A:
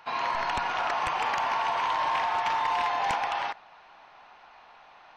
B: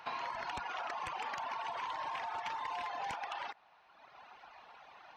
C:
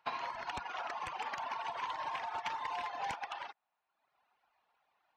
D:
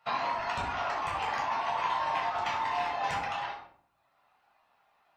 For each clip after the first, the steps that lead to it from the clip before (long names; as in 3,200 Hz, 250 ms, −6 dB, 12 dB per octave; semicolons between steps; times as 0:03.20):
high-pass filter 45 Hz; reverb reduction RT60 1.3 s; downward compressor 4 to 1, threshold −39 dBFS, peak gain reduction 10.5 dB
expander for the loud parts 2.5 to 1, over −54 dBFS; level +4 dB
rectangular room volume 880 cubic metres, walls furnished, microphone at 6.6 metres